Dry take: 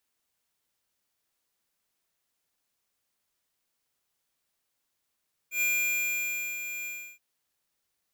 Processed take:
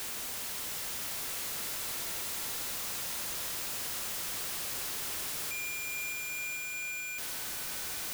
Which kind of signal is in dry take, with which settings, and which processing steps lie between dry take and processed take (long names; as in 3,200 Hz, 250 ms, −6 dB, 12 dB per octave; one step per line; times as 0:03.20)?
note with an ADSR envelope square 2,400 Hz, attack 103 ms, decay 967 ms, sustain −10 dB, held 1.35 s, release 325 ms −26 dBFS
sign of each sample alone
on a send: echo that builds up and dies away 88 ms, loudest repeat 8, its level −15 dB